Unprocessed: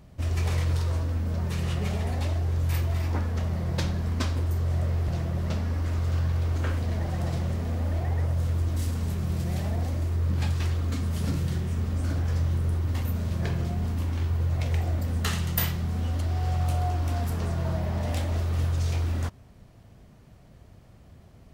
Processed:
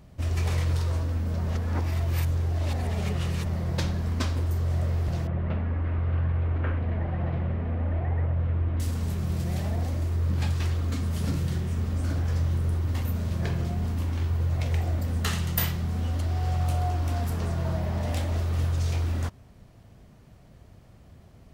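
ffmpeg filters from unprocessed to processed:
ffmpeg -i in.wav -filter_complex "[0:a]asettb=1/sr,asplit=3[link_01][link_02][link_03];[link_01]atrim=end=5.274[link_04];[link_02]atrim=start=5.27:end=8.8,asetpts=PTS-STARTPTS,afade=type=in:duration=0.004:curve=qsin,afade=type=out:start_time=3.526:duration=0.004:curve=qsin,lowpass=frequency=2600:width=0.5412,lowpass=frequency=2600:width=1.3066[link_05];[link_03]atrim=start=8.796[link_06];[link_04][link_05]acrossfade=duration=0.004:curve1=hsin:curve2=qsin[link_07];[link_07][link_06]acrossfade=duration=0.004:curve1=qsin:curve2=hsin,asplit=3[link_08][link_09][link_10];[link_08]atrim=end=1.482[link_11];[link_09]atrim=start=1.478:end=3.462,asetpts=PTS-STARTPTS,areverse[link_12];[link_10]atrim=start=3.458[link_13];[link_11][link_12]acrossfade=duration=0.004:curve1=hsin:curve2=hsin[link_14];[link_14][link_13]acrossfade=duration=0.004:curve1=hsin:curve2=hsin" out.wav

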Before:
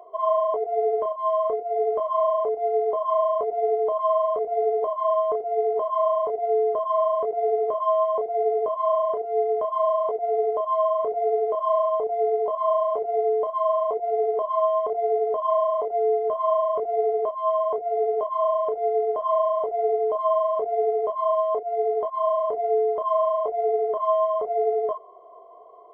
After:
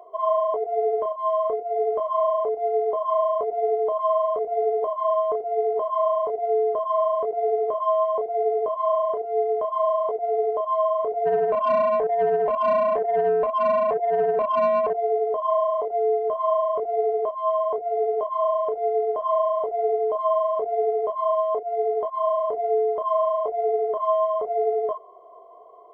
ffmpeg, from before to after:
ffmpeg -i in.wav -filter_complex "[0:a]asplit=3[link_01][link_02][link_03];[link_01]afade=type=out:start_time=11.25:duration=0.02[link_04];[link_02]asplit=2[link_05][link_06];[link_06]highpass=frequency=720:poles=1,volume=14dB,asoftclip=type=tanh:threshold=-12dB[link_07];[link_05][link_07]amix=inputs=2:normalize=0,lowpass=frequency=1200:poles=1,volume=-6dB,afade=type=in:start_time=11.25:duration=0.02,afade=type=out:start_time=14.92:duration=0.02[link_08];[link_03]afade=type=in:start_time=14.92:duration=0.02[link_09];[link_04][link_08][link_09]amix=inputs=3:normalize=0" out.wav

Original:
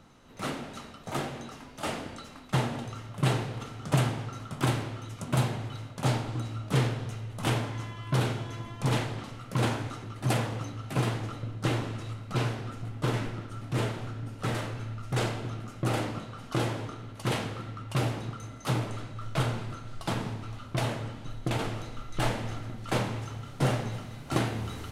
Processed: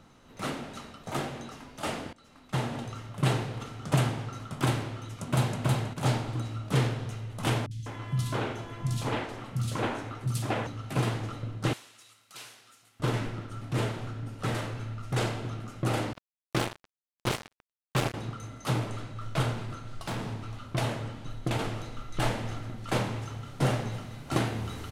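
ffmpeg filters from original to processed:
ffmpeg -i in.wav -filter_complex "[0:a]asplit=2[link_01][link_02];[link_02]afade=type=in:start_time=5.14:duration=0.01,afade=type=out:start_time=5.61:duration=0.01,aecho=0:1:320|640|960|1280:0.841395|0.210349|0.0525872|0.0131468[link_03];[link_01][link_03]amix=inputs=2:normalize=0,asettb=1/sr,asplit=3[link_04][link_05][link_06];[link_04]atrim=end=7.664[link_07];[link_05]atrim=start=7.66:end=10.67,asetpts=PTS-STARTPTS,afade=type=in:duration=0.004:curve=qsin,afade=type=out:start_time=3.006:duration=0.004:curve=qsin,acrossover=split=190|3600[link_08][link_09][link_10];[link_10]adelay=50[link_11];[link_09]adelay=200[link_12];[link_08][link_12][link_11]amix=inputs=3:normalize=0,atrim=end_sample=132741[link_13];[link_06]atrim=start=10.666[link_14];[link_07][link_13]acrossfade=duration=0.004:curve1=hsin:curve2=qsin[link_15];[link_15][link_14]acrossfade=duration=0.004:curve1=qsin:curve2=hsin,asettb=1/sr,asplit=3[link_16][link_17][link_18];[link_16]atrim=end=11.734[link_19];[link_17]atrim=start=11.73:end=13,asetpts=PTS-STARTPTS,afade=type=in:duration=0.004:curve=qsin,afade=type=out:start_time=1.266:duration=0.004:curve=qsin,aderivative[link_20];[link_18]atrim=start=12.996[link_21];[link_19][link_20]acrossfade=duration=0.004:curve1=hsin:curve2=qsin[link_22];[link_22][link_21]acrossfade=duration=0.004:curve1=qsin:curve2=hsin,asettb=1/sr,asplit=3[link_23][link_24][link_25];[link_23]atrim=end=16.134[link_26];[link_24]atrim=start=16.13:end=18.14,asetpts=PTS-STARTPTS,afade=type=in:duration=0.004:curve=qsin,afade=type=out:start_time=2.006:duration=0.004:curve=qsin,acrusher=bits=3:mix=0:aa=0.5[link_27];[link_25]atrim=start=18.136[link_28];[link_26][link_27]acrossfade=duration=0.004:curve1=hsin:curve2=qsin[link_29];[link_29][link_28]acrossfade=duration=0.004:curve1=qsin:curve2=hsin,asettb=1/sr,asplit=3[link_30][link_31][link_32];[link_30]atrim=end=19.534[link_33];[link_31]atrim=start=19.53:end=20.3,asetpts=PTS-STARTPTS,afade=type=in:duration=0.004:curve=qsin,afade=type=out:start_time=0.766:duration=0.004:curve=qsin,asoftclip=type=hard:threshold=-30dB[link_34];[link_32]atrim=start=20.296[link_35];[link_33][link_34]acrossfade=duration=0.004:curve1=hsin:curve2=qsin[link_36];[link_36][link_35]acrossfade=duration=0.004:curve1=qsin:curve2=hsin,asplit=2[link_37][link_38];[link_37]atrim=end=2.13,asetpts=PTS-STARTPTS,afade=type=out:start_time=2.126:duration=0.004:curve=hsin:silence=0.0841395[link_39];[link_38]atrim=start=2.13,asetpts=PTS-STARTPTS,afade=type=in:duration=0.66:silence=0.0841395[link_40];[link_39][link_40]concat=n=2:v=0:a=1" out.wav

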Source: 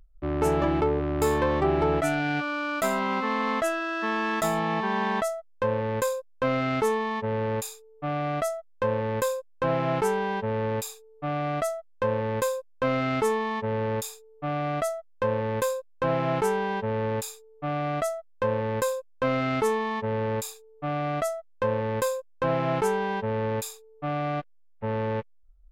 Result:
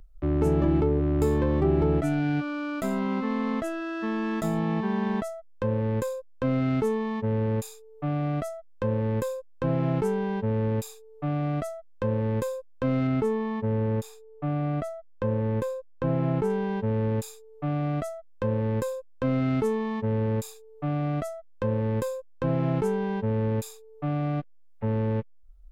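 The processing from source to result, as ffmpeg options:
ffmpeg -i in.wav -filter_complex "[0:a]asettb=1/sr,asplit=3[link_01][link_02][link_03];[link_01]atrim=end=13.074[link_04];[link_02]atrim=start=13.07:end=16.5,asetpts=PTS-STARTPTS,afade=type=in:duration=0.004:curve=qsin,afade=type=out:start_time=3.426:duration=0.004:curve=qsin,highshelf=frequency=3500:gain=-8.5[link_05];[link_03]atrim=start=16.496[link_06];[link_04][link_05]acrossfade=duration=0.004:curve1=hsin:curve2=qsin[link_07];[link_07][link_06]acrossfade=duration=0.004:curve1=qsin:curve2=hsin,acrossover=split=370[link_08][link_09];[link_09]acompressor=threshold=-52dB:ratio=2[link_10];[link_08][link_10]amix=inputs=2:normalize=0,volume=5.5dB" out.wav

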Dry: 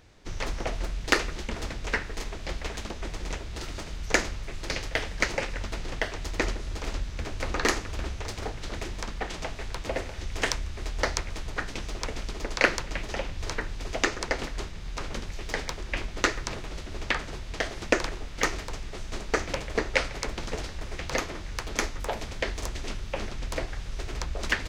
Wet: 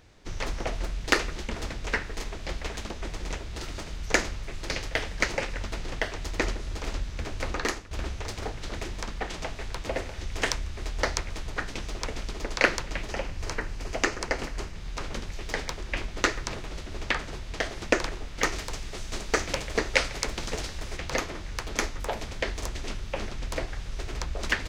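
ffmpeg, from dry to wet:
ffmpeg -i in.wav -filter_complex "[0:a]asettb=1/sr,asplit=3[link_01][link_02][link_03];[link_01]atrim=end=13.104[link_04];[link_02]atrim=start=13.1:end=14.76,asetpts=PTS-STARTPTS,afade=type=in:duration=0.004:curve=qsin,afade=type=out:start_time=1.656:duration=0.004:curve=qsin,equalizer=frequency=3600:width=4.6:gain=-6[link_05];[link_03]atrim=start=14.756[link_06];[link_04][link_05]acrossfade=duration=0.004:curve1=hsin:curve2=qsin[link_07];[link_07][link_06]acrossfade=duration=0.004:curve1=qsin:curve2=hsin,asettb=1/sr,asplit=3[link_08][link_09][link_10];[link_08]atrim=end=18.524[link_11];[link_09]atrim=start=18.52:end=20.97,asetpts=PTS-STARTPTS,afade=type=in:duration=0.004:curve=qsin,afade=type=out:start_time=2.446:duration=0.004:curve=qsin,highshelf=frequency=3300:gain=6.5[link_12];[link_10]atrim=start=20.966[link_13];[link_11][link_12]acrossfade=duration=0.004:curve1=hsin:curve2=qsin[link_14];[link_14][link_13]acrossfade=duration=0.004:curve1=qsin:curve2=hsin,asplit=2[link_15][link_16];[link_15]atrim=end=7.91,asetpts=PTS-STARTPTS,afade=type=out:start_time=7.45:duration=0.46:silence=0.199526[link_17];[link_16]atrim=start=7.91,asetpts=PTS-STARTPTS,afade=type=in:duration=0.004:curve=hsin:silence=0.199526[link_18];[link_17][link_18]concat=n=2:v=0:a=1" out.wav

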